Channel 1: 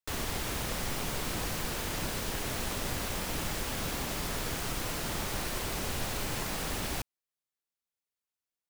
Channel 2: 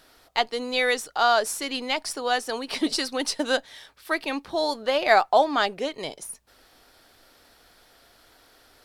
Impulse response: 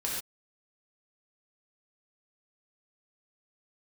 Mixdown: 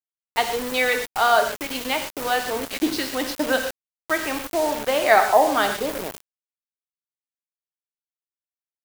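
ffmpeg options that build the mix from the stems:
-filter_complex "[0:a]volume=-12.5dB,asplit=2[a][b];[b]volume=-22.5dB[c];[1:a]highpass=f=120:w=0.5412,highpass=f=120:w=1.3066,afwtdn=0.0224,lowpass=3.2k,volume=-1.5dB,asplit=3[d][e][f];[e]volume=-5.5dB[g];[f]apad=whole_len=383612[h];[a][h]sidechaincompress=threshold=-25dB:ratio=8:attack=16:release=390[i];[2:a]atrim=start_sample=2205[j];[c][g]amix=inputs=2:normalize=0[k];[k][j]afir=irnorm=-1:irlink=0[l];[i][d][l]amix=inputs=3:normalize=0,highshelf=f=8.9k:g=11,acrusher=bits=4:mix=0:aa=0.000001"

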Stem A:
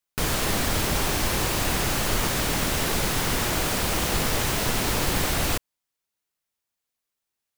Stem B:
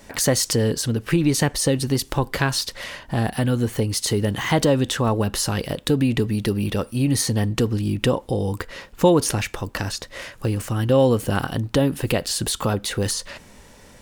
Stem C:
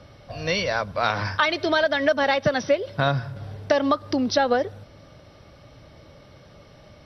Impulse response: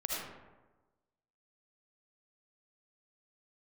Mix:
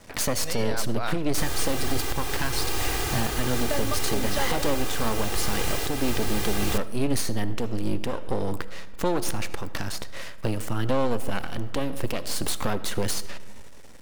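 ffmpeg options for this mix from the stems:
-filter_complex "[0:a]aecho=1:1:2.5:0.76,adelay=1200,volume=-6dB,asplit=2[a][b];[b]volume=-21dB[c];[1:a]aeval=exprs='max(val(0),0)':c=same,volume=-0.5dB,asplit=2[d][e];[e]volume=-17dB[f];[2:a]volume=-8.5dB,asplit=3[g][h][i];[g]atrim=end=1.18,asetpts=PTS-STARTPTS,afade=t=out:st=1.176:d=0.004:c=hsin[j];[h]atrim=start=1.18:end=3.15,asetpts=PTS-STARTPTS,volume=0[k];[i]atrim=start=3.15,asetpts=PTS-STARTPTS,afade=t=in:d=0.004:c=hsin[l];[j][k][l]concat=n=3:v=0:a=1[m];[3:a]atrim=start_sample=2205[n];[c][f]amix=inputs=2:normalize=0[o];[o][n]afir=irnorm=-1:irlink=0[p];[a][d][m][p]amix=inputs=4:normalize=0,alimiter=limit=-11.5dB:level=0:latency=1:release=377"

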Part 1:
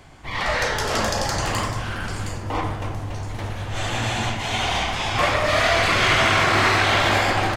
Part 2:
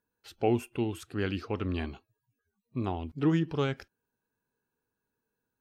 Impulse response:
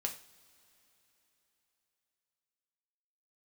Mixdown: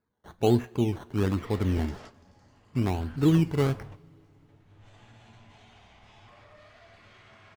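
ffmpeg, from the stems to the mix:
-filter_complex "[0:a]highshelf=f=8.1k:g=-10,alimiter=limit=-18.5dB:level=0:latency=1:release=78,adelay=1100,volume=-14dB,afade=t=in:st=4.62:d=0.22:silence=0.421697,asplit=2[a][b];[b]volume=-16dB[c];[1:a]acrusher=samples=14:mix=1:aa=0.000001:lfo=1:lforange=8.4:lforate=1.2,highshelf=f=4.1k:g=-8.5,volume=-1.5dB,asplit=3[d][e][f];[e]volume=-7dB[g];[f]apad=whole_len=381913[h];[a][h]sidechaingate=range=-33dB:threshold=-59dB:ratio=16:detection=peak[i];[2:a]atrim=start_sample=2205[j];[c][g]amix=inputs=2:normalize=0[k];[k][j]afir=irnorm=-1:irlink=0[l];[i][d][l]amix=inputs=3:normalize=0,equalizer=f=110:w=0.45:g=6"

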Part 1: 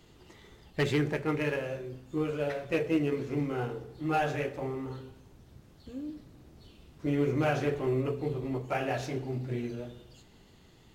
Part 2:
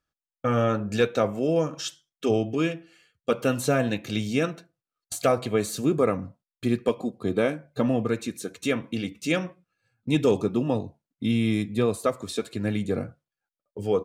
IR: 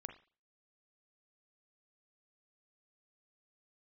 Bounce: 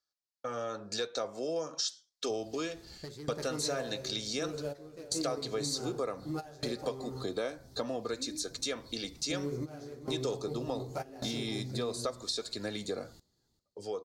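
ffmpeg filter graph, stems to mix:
-filter_complex "[0:a]equalizer=f=3k:w=0.51:g=-4.5,adelay=2250,volume=0dB,asplit=2[a][b];[b]volume=-20dB[c];[1:a]acrossover=split=370 7600:gain=0.178 1 0.141[d][e][f];[d][e][f]amix=inputs=3:normalize=0,dynaudnorm=f=290:g=7:m=10dB,volume=-8dB,asplit=2[g][h];[h]apad=whole_len=582002[i];[a][i]sidechaingate=range=-18dB:threshold=-56dB:ratio=16:detection=peak[j];[c]aecho=0:1:395|790|1185|1580:1|0.22|0.0484|0.0106[k];[j][g][k]amix=inputs=3:normalize=0,highshelf=f=3.5k:t=q:w=3:g=8,acompressor=threshold=-34dB:ratio=3"

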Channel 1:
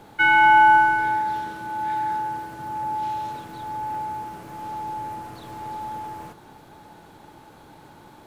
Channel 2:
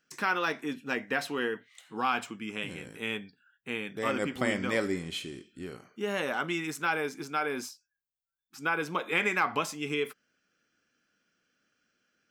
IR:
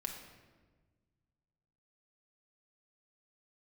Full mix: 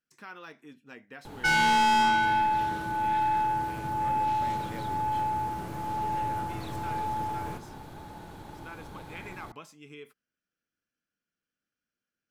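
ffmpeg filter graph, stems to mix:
-filter_complex "[0:a]aeval=exprs='(tanh(12.6*val(0)+0.05)-tanh(0.05))/12.6':c=same,adelay=1250,volume=1dB[a];[1:a]volume=-16.5dB[b];[a][b]amix=inputs=2:normalize=0,lowshelf=f=110:g=12"

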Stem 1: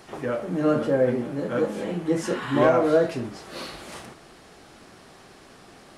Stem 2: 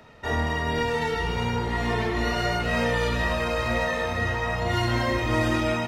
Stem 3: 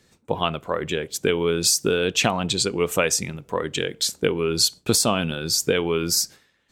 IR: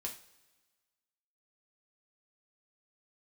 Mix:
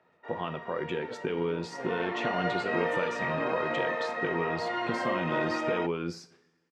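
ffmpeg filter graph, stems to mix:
-filter_complex "[0:a]adelay=850,volume=-8dB[a];[1:a]highpass=380,volume=-3dB,afade=t=in:st=1.7:d=0.41:silence=0.266073[b];[2:a]acompressor=threshold=-22dB:ratio=6,volume=-1.5dB,asplit=3[c][d][e];[d]volume=-7.5dB[f];[e]apad=whole_len=300888[g];[a][g]sidechaincompress=threshold=-37dB:ratio=8:attack=16:release=143[h];[h][c]amix=inputs=2:normalize=0,aeval=exprs='sgn(val(0))*max(abs(val(0))-0.00422,0)':c=same,alimiter=limit=-24dB:level=0:latency=1:release=127,volume=0dB[i];[3:a]atrim=start_sample=2205[j];[f][j]afir=irnorm=-1:irlink=0[k];[b][i][k]amix=inputs=3:normalize=0,highpass=160,lowpass=2.1k"

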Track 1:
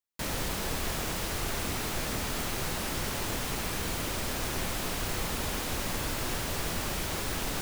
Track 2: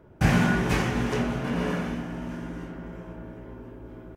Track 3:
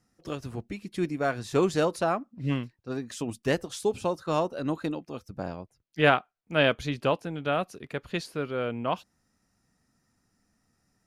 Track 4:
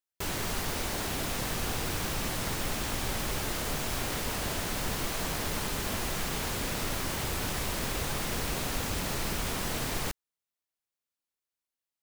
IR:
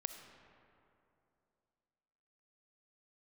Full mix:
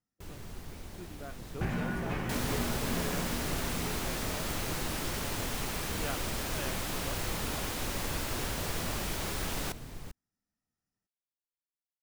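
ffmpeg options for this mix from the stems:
-filter_complex "[0:a]adelay=2100,volume=-2.5dB[a];[1:a]lowpass=3.3k,acompressor=threshold=-26dB:ratio=3,adelay=1400,volume=-6dB[b];[2:a]volume=-19.5dB[c];[3:a]lowshelf=f=320:g=11.5,volume=-18.5dB[d];[a][b][c][d]amix=inputs=4:normalize=0"

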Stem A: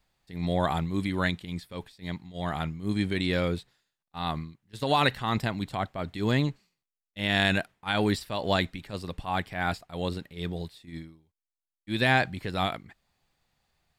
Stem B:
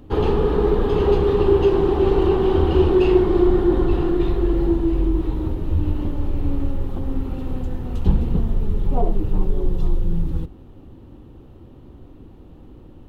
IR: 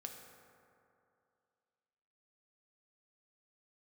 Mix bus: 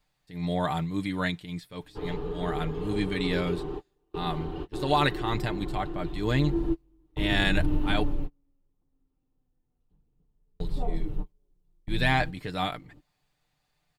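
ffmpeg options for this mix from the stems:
-filter_complex "[0:a]volume=-2.5dB,asplit=3[a][b][c];[a]atrim=end=8.03,asetpts=PTS-STARTPTS,afade=t=out:st=8.026:d=0.004:c=hsin[d];[b]atrim=start=8.03:end=10.6,asetpts=PTS-STARTPTS,volume=0[e];[c]atrim=start=10.6,asetpts=PTS-STARTPTS,afade=t=in:d=0.004:c=hsin[f];[d][e][f]concat=n=3:v=0:a=1,asplit=2[g][h];[1:a]adelay=1850,volume=-5dB,afade=t=in:st=6.29:d=0.67:silence=0.266073,afade=t=out:st=7.98:d=0.35:silence=0.421697[i];[h]apad=whole_len=658599[j];[i][j]sidechaingate=range=-39dB:threshold=-59dB:ratio=16:detection=peak[k];[g][k]amix=inputs=2:normalize=0,aecho=1:1:6.7:0.53"

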